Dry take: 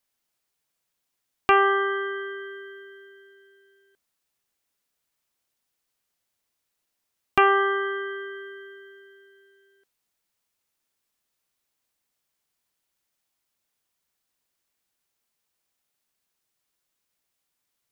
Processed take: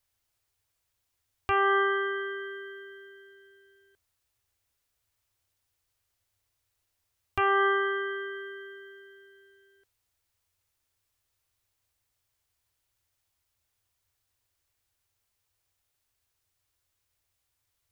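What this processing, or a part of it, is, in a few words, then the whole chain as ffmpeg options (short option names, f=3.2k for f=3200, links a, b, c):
car stereo with a boomy subwoofer: -af "lowshelf=f=130:t=q:w=3:g=10,alimiter=limit=-16dB:level=0:latency=1"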